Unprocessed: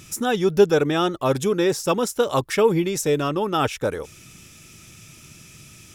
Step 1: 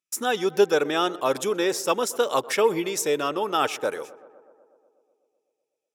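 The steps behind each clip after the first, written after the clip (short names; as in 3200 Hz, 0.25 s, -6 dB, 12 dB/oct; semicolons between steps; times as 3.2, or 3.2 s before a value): gate -35 dBFS, range -45 dB; Bessel high-pass 450 Hz, order 2; tape echo 0.124 s, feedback 79%, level -18.5 dB, low-pass 1700 Hz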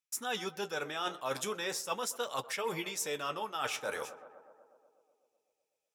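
bell 350 Hz -11.5 dB 1.3 oct; reverse; compressor 5:1, threshold -35 dBFS, peak gain reduction 14 dB; reverse; flange 0.4 Hz, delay 5.9 ms, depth 9.9 ms, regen -50%; gain +5.5 dB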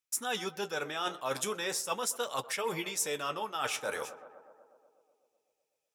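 dynamic EQ 9400 Hz, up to +5 dB, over -52 dBFS, Q 1.5; gain +1.5 dB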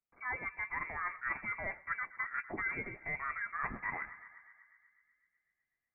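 inverted band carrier 2500 Hz; gain -3 dB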